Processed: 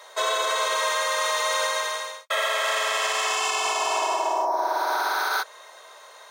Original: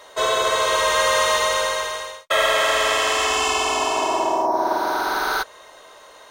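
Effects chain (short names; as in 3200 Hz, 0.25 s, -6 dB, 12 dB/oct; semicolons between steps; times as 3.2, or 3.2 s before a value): Bessel high-pass 610 Hz, order 6; notch 2900 Hz, Q 11; limiter -15.5 dBFS, peak gain reduction 7 dB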